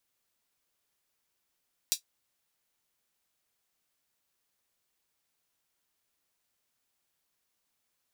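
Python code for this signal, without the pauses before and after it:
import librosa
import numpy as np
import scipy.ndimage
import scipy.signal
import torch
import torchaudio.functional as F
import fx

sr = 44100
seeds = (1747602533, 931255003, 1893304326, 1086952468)

y = fx.drum_hat(sr, length_s=0.24, from_hz=4300.0, decay_s=0.11)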